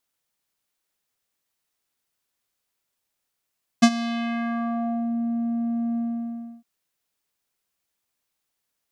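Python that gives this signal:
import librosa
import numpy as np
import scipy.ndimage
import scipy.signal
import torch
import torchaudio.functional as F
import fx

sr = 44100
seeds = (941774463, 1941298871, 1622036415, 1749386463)

y = fx.sub_voice(sr, note=58, wave='square', cutoff_hz=420.0, q=1.7, env_oct=4.0, env_s=1.32, attack_ms=14.0, decay_s=0.06, sustain_db=-16.5, release_s=0.66, note_s=2.15, slope=12)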